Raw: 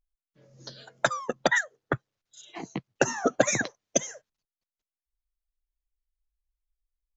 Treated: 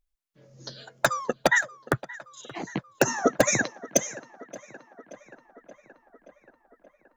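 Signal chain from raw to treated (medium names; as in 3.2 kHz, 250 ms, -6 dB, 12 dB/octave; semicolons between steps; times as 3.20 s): in parallel at -8 dB: integer overflow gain 9.5 dB; on the sum: dynamic bell 3.3 kHz, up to -5 dB, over -45 dBFS, Q 3.9; tape echo 577 ms, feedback 72%, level -18 dB, low-pass 3.5 kHz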